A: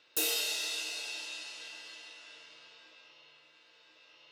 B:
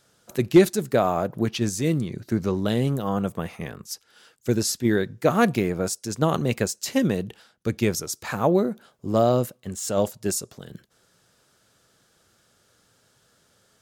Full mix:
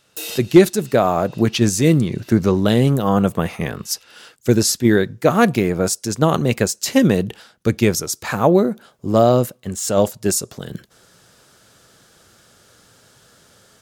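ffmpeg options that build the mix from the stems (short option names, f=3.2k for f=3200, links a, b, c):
-filter_complex "[0:a]volume=0dB[a];[1:a]volume=1dB,asplit=2[b][c];[c]apad=whole_len=190270[d];[a][d]sidechaincompress=threshold=-37dB:ratio=8:attack=23:release=259[e];[e][b]amix=inputs=2:normalize=0,dynaudnorm=f=200:g=3:m=10dB"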